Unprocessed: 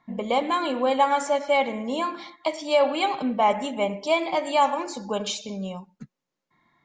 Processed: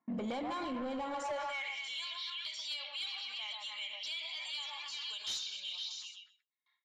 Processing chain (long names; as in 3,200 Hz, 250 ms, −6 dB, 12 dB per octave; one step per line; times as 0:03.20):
on a send: echo through a band-pass that steps 128 ms, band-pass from 860 Hz, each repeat 0.7 octaves, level −2 dB
on the sum: downward compressor 6 to 1, threshold −26 dBFS, peak gain reduction 11.5 dB
high-shelf EQ 3,100 Hz +8 dB
noise gate with hold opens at −51 dBFS
high-pass filter sweep 240 Hz → 3,500 Hz, 0:01.08–0:01.81
soft clipping −22.5 dBFS, distortion −13 dB
0:00.63–0:01.22: low-shelf EQ 320 Hz +6 dB
in parallel at −10.5 dB: hard clipping −34 dBFS, distortion −6 dB
on the sum: brickwall limiter −33 dBFS, peak gain reduction 14 dB
low-pass that shuts in the quiet parts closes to 1,400 Hz, open at −31.5 dBFS